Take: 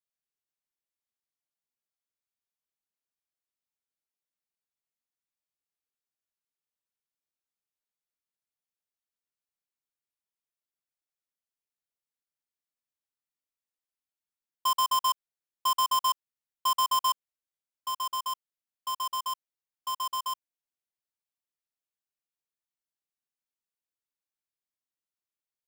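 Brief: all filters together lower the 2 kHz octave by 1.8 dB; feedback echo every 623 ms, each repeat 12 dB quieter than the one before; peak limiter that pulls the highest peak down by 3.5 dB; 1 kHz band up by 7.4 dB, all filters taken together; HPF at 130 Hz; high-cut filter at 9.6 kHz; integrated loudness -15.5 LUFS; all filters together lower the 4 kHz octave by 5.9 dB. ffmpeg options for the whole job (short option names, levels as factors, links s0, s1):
-af "highpass=130,lowpass=9600,equalizer=f=1000:t=o:g=9,equalizer=f=2000:t=o:g=-5.5,equalizer=f=4000:t=o:g=-7,alimiter=limit=0.126:level=0:latency=1,aecho=1:1:623|1246|1869:0.251|0.0628|0.0157,volume=3.55"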